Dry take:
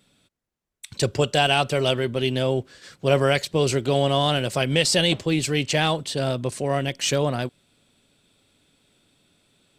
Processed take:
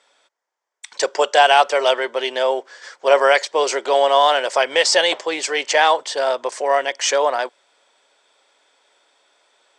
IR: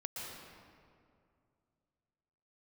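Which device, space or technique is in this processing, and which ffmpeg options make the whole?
phone speaker on a table: -af "highpass=f=500:w=0.5412,highpass=f=500:w=1.3066,equalizer=f=930:t=q:w=4:g=7,equalizer=f=1.8k:t=q:w=4:g=3,equalizer=f=2.7k:t=q:w=4:g=-7,equalizer=f=4k:t=q:w=4:g=-8,lowpass=f=7k:w=0.5412,lowpass=f=7k:w=1.3066,volume=8dB"

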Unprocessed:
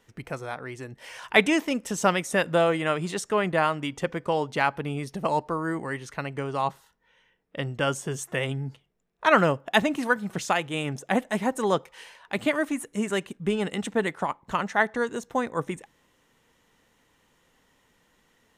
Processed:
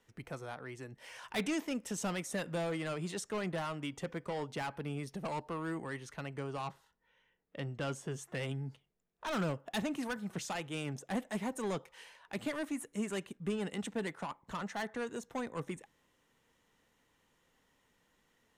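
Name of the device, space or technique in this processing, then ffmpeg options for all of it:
one-band saturation: -filter_complex "[0:a]asettb=1/sr,asplit=3[a][b][c];[a]atrim=end=6.674[d];[b]atrim=start=6.67:end=8.39,asetpts=PTS-STARTPTS,afade=t=in:d=0.004:c=qsin,afade=t=out:st=1.716:d=0.004:c=qsin,highshelf=f=6.6k:g=-9[e];[c]atrim=start=8.386[f];[d][e]acrossfade=d=0.004:c1=hsin:c2=qsin[g];[g][f]acrossfade=d=0.004:c1=qsin:c2=hsin,acrossover=split=280|4000[h][i][j];[i]asoftclip=type=tanh:threshold=-27dB[k];[h][k][j]amix=inputs=3:normalize=0,volume=-8dB"

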